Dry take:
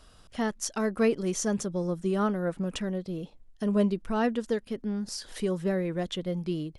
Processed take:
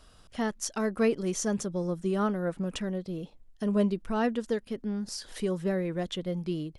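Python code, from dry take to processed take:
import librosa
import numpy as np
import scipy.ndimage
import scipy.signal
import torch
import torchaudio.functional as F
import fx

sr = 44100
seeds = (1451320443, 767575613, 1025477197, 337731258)

y = F.gain(torch.from_numpy(x), -1.0).numpy()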